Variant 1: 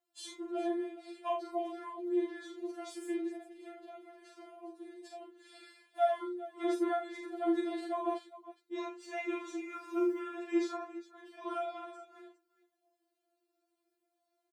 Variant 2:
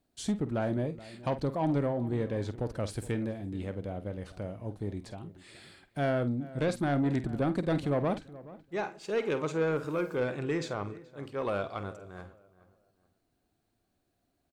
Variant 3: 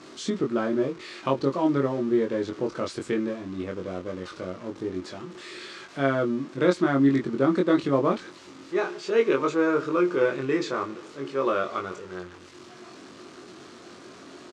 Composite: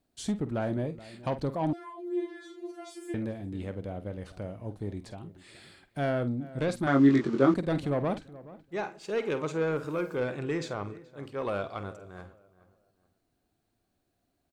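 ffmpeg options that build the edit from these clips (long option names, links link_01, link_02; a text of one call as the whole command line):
ffmpeg -i take0.wav -i take1.wav -i take2.wav -filter_complex "[1:a]asplit=3[link_01][link_02][link_03];[link_01]atrim=end=1.732[link_04];[0:a]atrim=start=1.728:end=3.142[link_05];[link_02]atrim=start=3.138:end=6.872[link_06];[2:a]atrim=start=6.868:end=7.542[link_07];[link_03]atrim=start=7.538[link_08];[link_04][link_05]acrossfade=duration=0.004:curve1=hsin:curve2=hsin[link_09];[link_09][link_06]acrossfade=duration=0.004:curve1=hsin:curve2=hsin[link_10];[link_10][link_07]acrossfade=duration=0.004:curve1=hsin:curve2=hsin[link_11];[link_11][link_08]acrossfade=duration=0.004:curve1=hsin:curve2=hsin" out.wav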